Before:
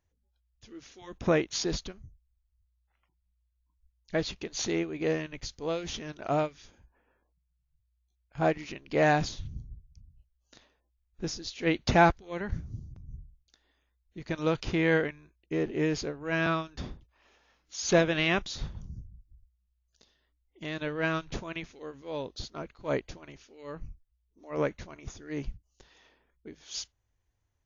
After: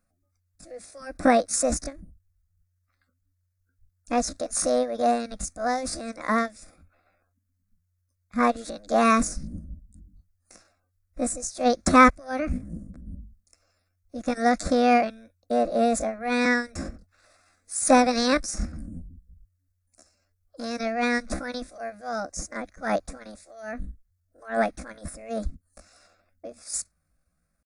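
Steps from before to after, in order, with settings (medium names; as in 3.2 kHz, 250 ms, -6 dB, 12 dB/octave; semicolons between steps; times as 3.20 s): pitch shift +7 st; static phaser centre 610 Hz, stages 8; trim +9 dB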